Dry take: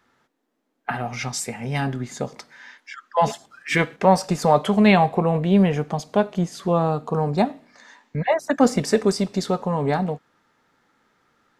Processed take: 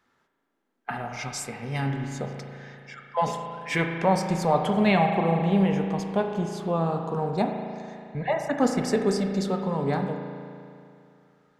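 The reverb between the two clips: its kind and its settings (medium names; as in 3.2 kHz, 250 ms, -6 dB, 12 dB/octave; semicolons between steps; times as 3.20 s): spring tank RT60 2.5 s, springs 36 ms, chirp 75 ms, DRR 3.5 dB; trim -6 dB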